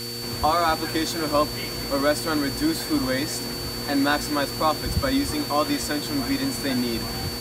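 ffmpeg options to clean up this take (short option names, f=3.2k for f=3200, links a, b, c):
-af "bandreject=f=118.7:t=h:w=4,bandreject=f=237.4:t=h:w=4,bandreject=f=356.1:t=h:w=4,bandreject=f=474.8:t=h:w=4,bandreject=f=4.5k:w=30,afwtdn=0.014"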